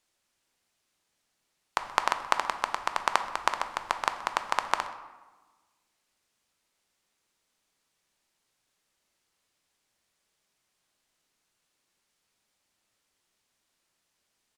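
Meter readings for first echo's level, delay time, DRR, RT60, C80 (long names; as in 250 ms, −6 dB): −20.5 dB, 127 ms, 8.0 dB, 1.3 s, 12.0 dB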